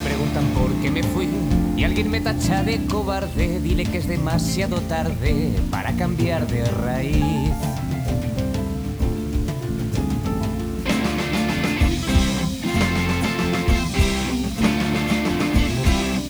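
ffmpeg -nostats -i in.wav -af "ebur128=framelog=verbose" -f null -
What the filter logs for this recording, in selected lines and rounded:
Integrated loudness:
  I:         -21.7 LUFS
  Threshold: -31.7 LUFS
Loudness range:
  LRA:         3.1 LU
  Threshold: -42.0 LUFS
  LRA low:   -23.8 LUFS
  LRA high:  -20.7 LUFS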